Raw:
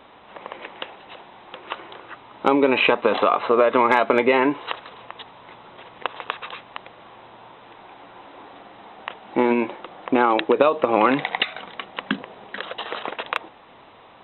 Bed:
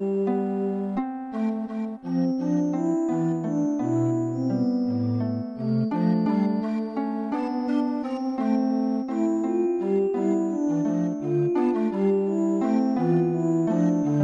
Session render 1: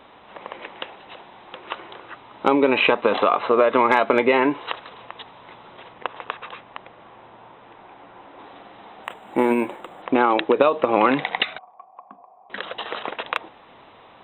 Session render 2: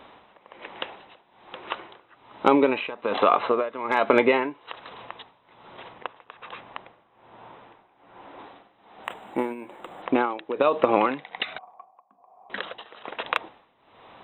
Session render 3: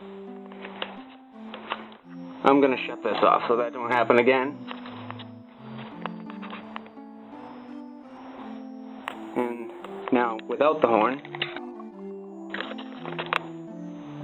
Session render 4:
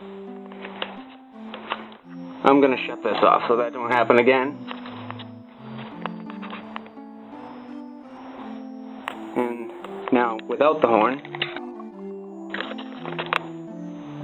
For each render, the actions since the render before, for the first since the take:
0:05.93–0:08.39: high-frequency loss of the air 240 metres; 0:09.04–0:10.02: linearly interpolated sample-rate reduction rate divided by 4×; 0:11.58–0:12.50: formant resonators in series a
amplitude tremolo 1.2 Hz, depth 87%
mix in bed −16.5 dB
level +3 dB; brickwall limiter −1 dBFS, peak gain reduction 1 dB

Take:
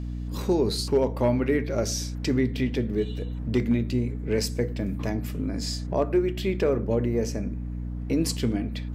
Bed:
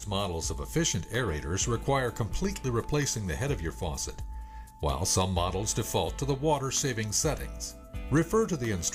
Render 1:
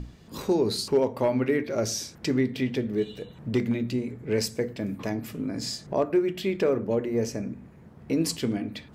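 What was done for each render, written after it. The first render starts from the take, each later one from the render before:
mains-hum notches 60/120/180/240/300 Hz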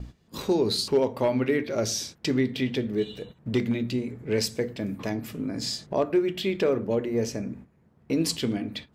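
noise gate −42 dBFS, range −12 dB
dynamic equaliser 3,500 Hz, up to +6 dB, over −50 dBFS, Q 1.7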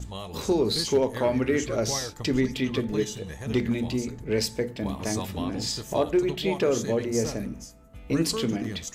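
mix in bed −7 dB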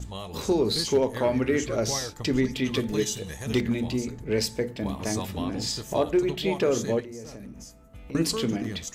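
0:02.65–0:03.61: high-shelf EQ 3,500 Hz +9 dB
0:07.00–0:08.15: downward compressor 5 to 1, threshold −38 dBFS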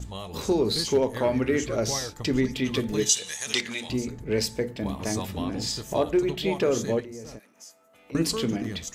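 0:03.09–0:03.90: meter weighting curve ITU-R 468
0:07.38–0:08.11: high-pass filter 960 Hz → 380 Hz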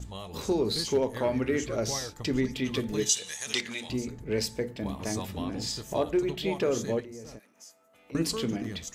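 level −3.5 dB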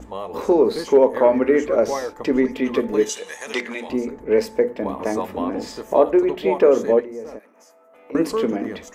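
octave-band graphic EQ 125/250/500/1,000/2,000/4,000/8,000 Hz −12/+8/+12/+10/+6/−6/−4 dB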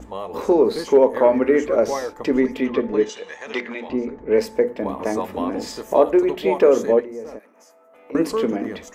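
0:02.66–0:04.34: high-frequency loss of the air 160 metres
0:05.33–0:06.86: high-shelf EQ 3,900 Hz +5 dB

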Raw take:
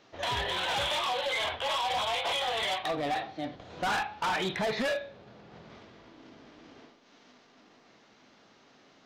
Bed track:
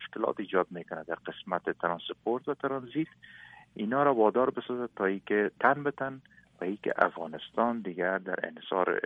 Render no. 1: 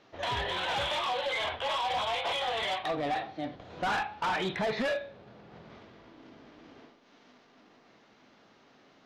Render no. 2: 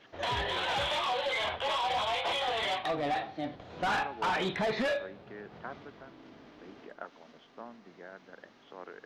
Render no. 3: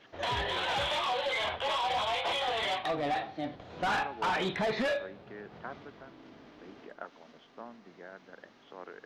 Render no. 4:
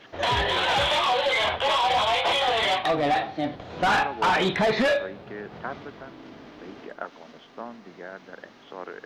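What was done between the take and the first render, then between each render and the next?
low-pass filter 3,800 Hz 6 dB per octave
mix in bed track −19 dB
no processing that can be heard
level +8.5 dB

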